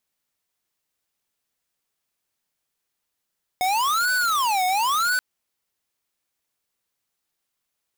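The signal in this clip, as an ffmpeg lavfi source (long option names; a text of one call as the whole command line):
ffmpeg -f lavfi -i "aevalsrc='0.0841*(2*lt(mod((1116.5*t-383.5/(2*PI*0.96)*sin(2*PI*0.96*t)),1),0.5)-1)':duration=1.58:sample_rate=44100" out.wav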